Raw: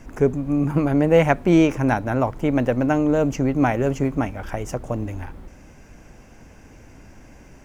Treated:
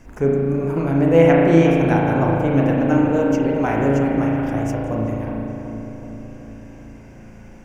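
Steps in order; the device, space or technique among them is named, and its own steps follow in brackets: dub delay into a spring reverb (darkening echo 0.374 s, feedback 66%, low-pass 1000 Hz, level -6 dB; spring tank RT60 2.1 s, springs 36 ms, chirp 75 ms, DRR -2.5 dB); gain -3 dB

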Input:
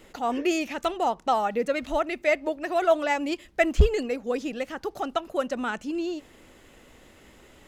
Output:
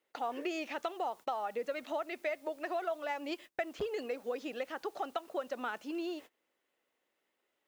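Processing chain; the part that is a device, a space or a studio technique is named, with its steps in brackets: dynamic EQ 2300 Hz, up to -3 dB, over -42 dBFS, Q 1.2; baby monitor (BPF 420–4400 Hz; compressor 8:1, threshold -30 dBFS, peak gain reduction 13.5 dB; white noise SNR 28 dB; gate -47 dBFS, range -24 dB); gain -2.5 dB

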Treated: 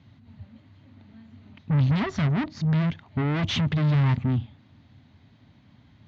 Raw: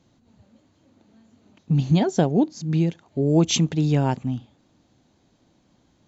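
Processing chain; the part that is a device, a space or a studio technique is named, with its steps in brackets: guitar amplifier (tube stage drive 31 dB, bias 0.65; tone controls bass +8 dB, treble +6 dB; speaker cabinet 87–3700 Hz, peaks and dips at 92 Hz +8 dB, 180 Hz -5 dB, 340 Hz -10 dB, 500 Hz -9 dB, 750 Hz -3 dB, 2000 Hz +6 dB); gain +7.5 dB

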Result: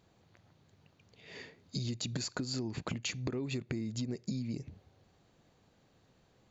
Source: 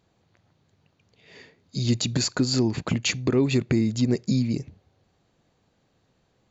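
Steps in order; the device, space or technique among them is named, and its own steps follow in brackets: serial compression, leveller first (compressor 1.5:1, threshold -29 dBFS, peak gain reduction 5 dB; compressor 6:1, threshold -34 dBFS, peak gain reduction 12.5 dB)

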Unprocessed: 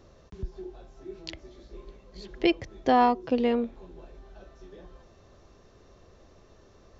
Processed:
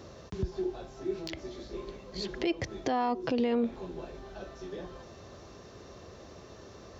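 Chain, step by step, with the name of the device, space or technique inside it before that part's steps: broadcast voice chain (HPF 78 Hz 12 dB/oct; de-esser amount 80%; compressor, threshold -27 dBFS, peak gain reduction 11 dB; bell 4900 Hz +2.5 dB; limiter -28.5 dBFS, peak gain reduction 11 dB); gain +8 dB

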